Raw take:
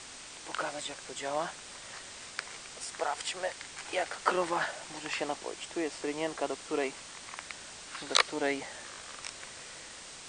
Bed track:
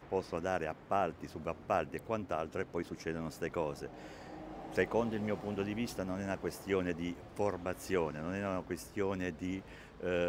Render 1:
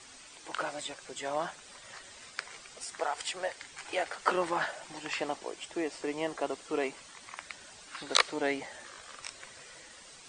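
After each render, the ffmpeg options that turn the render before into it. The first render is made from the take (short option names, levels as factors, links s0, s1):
-af "afftdn=nr=10:nf=-48"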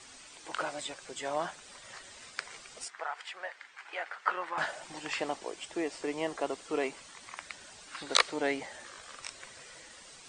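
-filter_complex "[0:a]asettb=1/sr,asplit=3[s0][s1][s2];[s0]atrim=end=2.884[s3];[s1]atrim=start=2.88:end=4.58,asetpts=PTS-STARTPTS,afade=t=in:d=0.004:c=qsin,afade=t=out:st=1.696:d=0.004:c=qsin,bandpass=f=1500:t=q:w=1.2[s4];[s2]atrim=start=4.576[s5];[s3][s4]acrossfade=d=0.004:c1=hsin:c2=qsin[s6];[s6][s5]acrossfade=d=0.004:c1=qsin:c2=hsin"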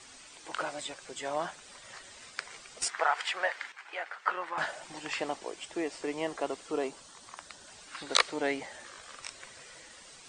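-filter_complex "[0:a]asettb=1/sr,asplit=3[s0][s1][s2];[s0]atrim=end=6.714[s3];[s1]atrim=start=6.71:end=7.68,asetpts=PTS-STARTPTS,afade=t=in:d=0.004:c=qsin,afade=t=out:st=0.966:d=0.004:c=qsin,equalizer=f=2200:t=o:w=0.67:g=-9.5[s4];[s2]atrim=start=7.676[s5];[s3][s4]acrossfade=d=0.004:c1=hsin:c2=qsin[s6];[s6][s5]acrossfade=d=0.004:c1=qsin:c2=hsin,asplit=3[s7][s8][s9];[s7]atrim=end=2.822[s10];[s8]atrim=start=2.818:end=3.722,asetpts=PTS-STARTPTS,volume=3.16[s11];[s9]atrim=start=3.718[s12];[s10][s11]acrossfade=d=0.004:c1=hsin:c2=hsin[s13];[s13][s12]acrossfade=d=0.004:c1=hsin:c2=hsin"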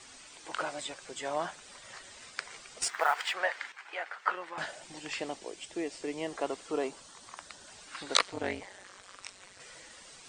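-filter_complex "[0:a]asettb=1/sr,asplit=3[s0][s1][s2];[s0]atrim=end=2.834[s3];[s1]atrim=start=2.83:end=3.34,asetpts=PTS-STARTPTS,afade=t=in:d=0.004:c=qsin,afade=t=out:st=0.506:d=0.004:c=qsin,acrusher=bits=6:mode=log:mix=0:aa=0.000001[s4];[s2]atrim=start=3.336[s5];[s3][s4]acrossfade=d=0.004:c1=hsin:c2=qsin[s6];[s6][s5]acrossfade=d=0.004:c1=qsin:c2=hsin,asettb=1/sr,asplit=3[s7][s8][s9];[s7]atrim=end=4.354[s10];[s8]atrim=start=4.35:end=6.33,asetpts=PTS-STARTPTS,afade=t=in:d=0.004:c=qsin,afade=t=out:st=1.976:d=0.004:c=qsin,equalizer=f=1100:t=o:w=1.7:g=-7[s11];[s9]atrim=start=6.326[s12];[s10][s11]acrossfade=d=0.004:c1=hsin:c2=qsin[s13];[s13][s12]acrossfade=d=0.004:c1=qsin:c2=hsin,asettb=1/sr,asplit=3[s14][s15][s16];[s14]atrim=end=8.194[s17];[s15]atrim=start=8.19:end=9.6,asetpts=PTS-STARTPTS,afade=t=in:d=0.004:c=qsin,afade=t=out:st=1.406:d=0.004:c=qsin,tremolo=f=190:d=0.919[s18];[s16]atrim=start=9.596[s19];[s17][s18]acrossfade=d=0.004:c1=hsin:c2=qsin[s20];[s20][s19]acrossfade=d=0.004:c1=qsin:c2=hsin"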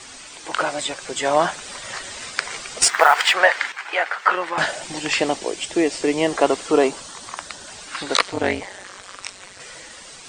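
-af "dynaudnorm=f=170:g=13:m=1.68,alimiter=level_in=3.98:limit=0.891:release=50:level=0:latency=1"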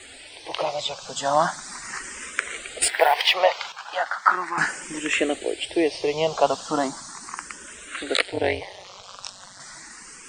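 -filter_complex "[0:a]asplit=2[s0][s1];[s1]afreqshift=0.37[s2];[s0][s2]amix=inputs=2:normalize=1"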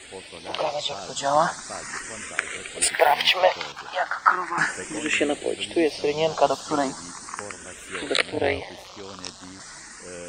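-filter_complex "[1:a]volume=0.501[s0];[0:a][s0]amix=inputs=2:normalize=0"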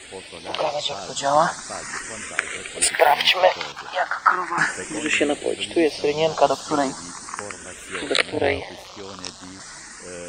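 -af "volume=1.33,alimiter=limit=0.794:level=0:latency=1"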